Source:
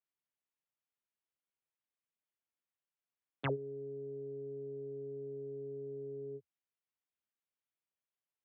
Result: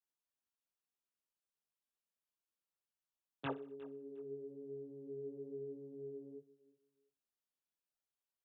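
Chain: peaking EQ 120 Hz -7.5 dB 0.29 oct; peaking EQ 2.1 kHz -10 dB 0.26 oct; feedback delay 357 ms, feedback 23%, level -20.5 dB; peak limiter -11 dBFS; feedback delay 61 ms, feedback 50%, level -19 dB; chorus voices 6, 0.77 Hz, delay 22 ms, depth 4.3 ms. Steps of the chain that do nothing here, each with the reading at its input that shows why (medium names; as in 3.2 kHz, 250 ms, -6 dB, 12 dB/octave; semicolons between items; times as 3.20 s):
peak limiter -11 dBFS: peak at its input -22.5 dBFS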